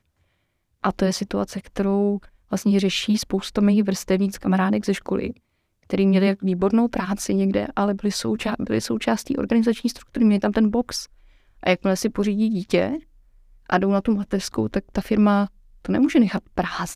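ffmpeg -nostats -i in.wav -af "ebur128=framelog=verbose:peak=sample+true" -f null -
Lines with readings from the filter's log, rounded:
Integrated loudness:
  I:         -22.1 LUFS
  Threshold: -32.5 LUFS
Loudness range:
  LRA:         1.8 LU
  Threshold: -42.5 LUFS
  LRA low:   -23.5 LUFS
  LRA high:  -21.8 LUFS
Sample peak:
  Peak:       -4.9 dBFS
True peak:
  Peak:       -4.9 dBFS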